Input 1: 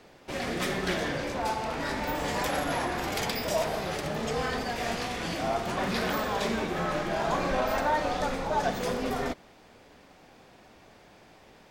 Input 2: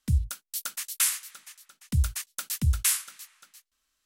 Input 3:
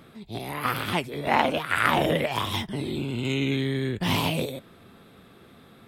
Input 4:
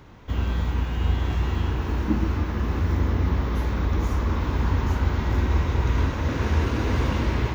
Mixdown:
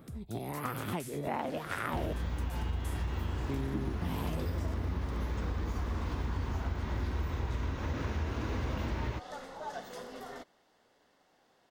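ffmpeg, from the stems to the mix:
ffmpeg -i stem1.wav -i stem2.wav -i stem3.wav -i stem4.wav -filter_complex "[0:a]lowshelf=frequency=230:gain=-11,bandreject=frequency=2400:width=5.5,adelay=1100,volume=-12dB[link_01];[1:a]acompressor=threshold=-43dB:ratio=1.5,volume=-13dB[link_02];[2:a]equalizer=frequency=3700:width_type=o:width=3:gain=-11.5,volume=-2dB,asplit=3[link_03][link_04][link_05];[link_03]atrim=end=2.13,asetpts=PTS-STARTPTS,afade=type=out:start_time=2.126:duration=0.004:curve=hsin[link_06];[link_04]atrim=start=2.13:end=3.49,asetpts=PTS-STARTPTS,volume=0[link_07];[link_05]atrim=start=3.49,asetpts=PTS-STARTPTS,afade=type=in:duration=0.004:curve=hsin[link_08];[link_06][link_07][link_08]concat=n=3:v=0:a=1[link_09];[3:a]adelay=1650,volume=-3dB[link_10];[link_01][link_02][link_09][link_10]amix=inputs=4:normalize=0,acompressor=threshold=-32dB:ratio=4" out.wav

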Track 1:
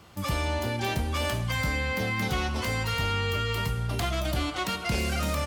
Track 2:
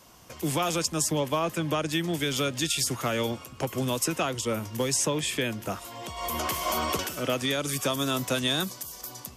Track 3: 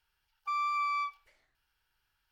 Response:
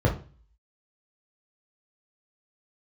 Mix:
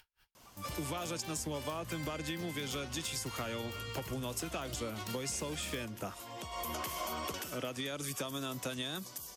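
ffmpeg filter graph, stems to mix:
-filter_complex "[0:a]bass=frequency=250:gain=-2,treble=frequency=4000:gain=7,adelay=400,volume=-13.5dB[link_01];[1:a]adelay=350,volume=-6dB[link_02];[2:a]acompressor=mode=upward:threshold=-34dB:ratio=2.5,aeval=exprs='val(0)*pow(10,-38*(0.5-0.5*cos(2*PI*4.6*n/s))/20)':channel_layout=same,volume=-11.5dB[link_03];[link_01][link_02][link_03]amix=inputs=3:normalize=0,acompressor=threshold=-35dB:ratio=6"

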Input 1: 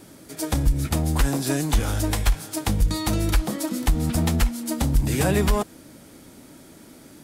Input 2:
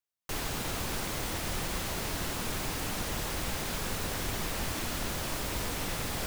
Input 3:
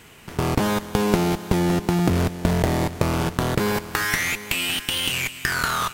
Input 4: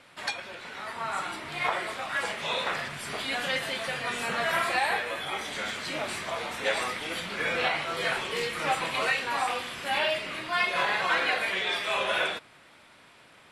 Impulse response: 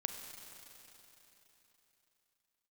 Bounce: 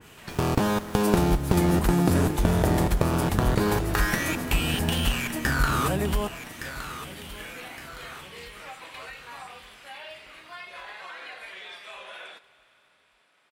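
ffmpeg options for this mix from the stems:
-filter_complex "[0:a]highshelf=frequency=11000:gain=10.5,adelay=650,volume=-5.5dB,asplit=2[link_01][link_02];[link_02]volume=-18dB[link_03];[1:a]volume=-17.5dB,asplit=2[link_04][link_05];[link_05]volume=-6dB[link_06];[2:a]bandreject=frequency=2100:width=12,volume=-2dB,asplit=2[link_07][link_08];[link_08]volume=-12.5dB[link_09];[3:a]highpass=frequency=450:poles=1,alimiter=limit=-20.5dB:level=0:latency=1:release=136,volume=-14dB,asplit=2[link_10][link_11];[link_11]volume=-7.5dB[link_12];[4:a]atrim=start_sample=2205[link_13];[link_06][link_12]amix=inputs=2:normalize=0[link_14];[link_14][link_13]afir=irnorm=-1:irlink=0[link_15];[link_03][link_09]amix=inputs=2:normalize=0,aecho=0:1:1165|2330|3495|4660|5825|6990:1|0.41|0.168|0.0689|0.0283|0.0116[link_16];[link_01][link_04][link_07][link_10][link_15][link_16]amix=inputs=6:normalize=0,adynamicequalizer=threshold=0.0112:dfrequency=2200:dqfactor=0.7:tfrequency=2200:tqfactor=0.7:attack=5:release=100:ratio=0.375:range=3:mode=cutabove:tftype=highshelf"

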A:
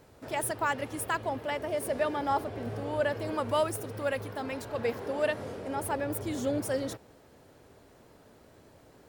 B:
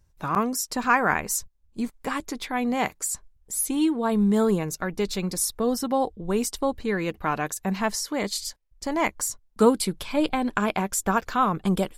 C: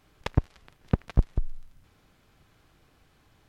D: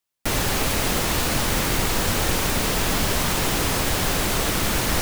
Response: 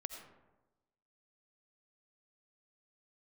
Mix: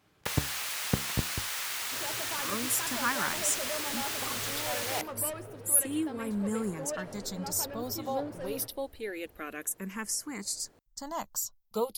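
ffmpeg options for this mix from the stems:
-filter_complex "[0:a]acrossover=split=3400[link_01][link_02];[link_02]acompressor=threshold=-48dB:ratio=4:attack=1:release=60[link_03];[link_01][link_03]amix=inputs=2:normalize=0,asoftclip=type=tanh:threshold=-28dB,flanger=delay=5.5:depth=6.4:regen=68:speed=0.75:shape=triangular,adelay=1700,volume=-3.5dB,asplit=2[link_04][link_05];[link_05]volume=-8dB[link_06];[1:a]aemphasis=mode=production:type=50fm,asplit=2[link_07][link_08];[link_08]afreqshift=-0.28[link_09];[link_07][link_09]amix=inputs=2:normalize=1,adelay=2150,volume=-9dB[link_10];[2:a]highpass=100,flanger=delay=9:depth=8.9:regen=77:speed=0.66:shape=triangular,volume=1.5dB[link_11];[3:a]highpass=1300,volume=-10.5dB,asplit=2[link_12][link_13];[link_13]volume=-11dB[link_14];[4:a]atrim=start_sample=2205[link_15];[link_06][link_14]amix=inputs=2:normalize=0[link_16];[link_16][link_15]afir=irnorm=-1:irlink=0[link_17];[link_04][link_10][link_11][link_12][link_17]amix=inputs=5:normalize=0"

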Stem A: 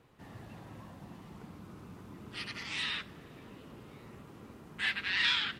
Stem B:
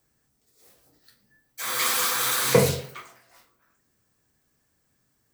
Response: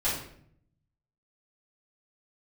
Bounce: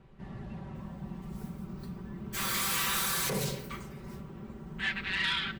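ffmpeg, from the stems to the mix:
-filter_complex "[0:a]aemphasis=mode=reproduction:type=bsi,volume=0dB[link_01];[1:a]alimiter=limit=-14.5dB:level=0:latency=1:release=86,asoftclip=type=tanh:threshold=-23.5dB,adelay=750,volume=-4dB[link_02];[link_01][link_02]amix=inputs=2:normalize=0,aecho=1:1:5.2:0.73,asoftclip=type=tanh:threshold=-20dB"

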